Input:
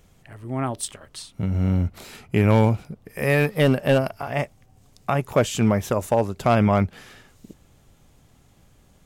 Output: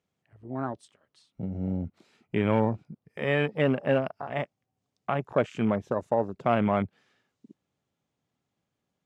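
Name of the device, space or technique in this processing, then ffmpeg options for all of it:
over-cleaned archive recording: -af "highpass=150,lowpass=6100,afwtdn=0.0251,volume=-5dB"

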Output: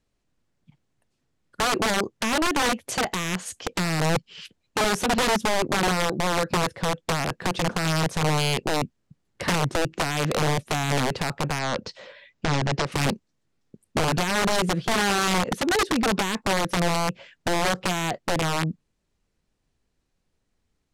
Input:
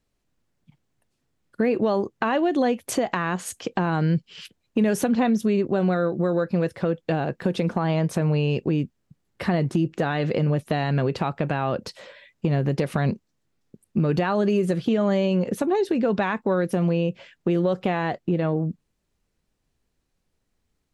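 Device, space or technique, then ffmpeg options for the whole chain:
overflowing digital effects unit: -filter_complex "[0:a]aeval=exprs='(mod(7.08*val(0)+1,2)-1)/7.08':channel_layout=same,lowpass=9800,asettb=1/sr,asplit=3[link_01][link_02][link_03];[link_01]atrim=end=11.594[link_04];[link_02]atrim=start=11.59:end=12.92,asetpts=PTS-STARTPTS,afade=type=in:duration=0.004:curve=qsin,afade=type=out:start_time=1.326:duration=0.004:curve=qsin,lowpass=frequency=6900:width=0.5412,lowpass=frequency=6900:width=1.3066[link_05];[link_03]atrim=start=12.916[link_06];[link_04][link_05]acrossfade=duration=0.004:curve1=hsin:curve2=qsin[link_07];[link_07][link_06]acrossfade=duration=0.004:curve1=qsin:curve2=hsin"

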